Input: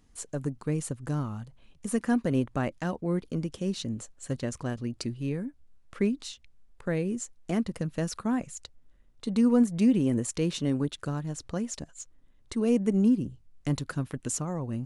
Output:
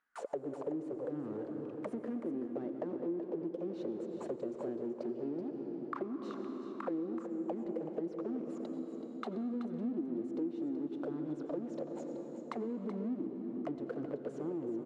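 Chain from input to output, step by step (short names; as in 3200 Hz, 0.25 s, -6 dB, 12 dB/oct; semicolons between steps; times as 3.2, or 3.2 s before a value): in parallel at -5 dB: fuzz box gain 46 dB, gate -47 dBFS; on the sum: auto-wah 330–1500 Hz, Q 9.7, down, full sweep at -15.5 dBFS; bell 77 Hz -9.5 dB 1.7 oct; on a send at -8 dB: reverb RT60 3.3 s, pre-delay 79 ms; on the sum: compressor 4:1, threshold -43 dBFS, peak gain reduction 17.5 dB; high shelf 10000 Hz -10.5 dB; echo 0.378 s -10 dB; gain +5.5 dB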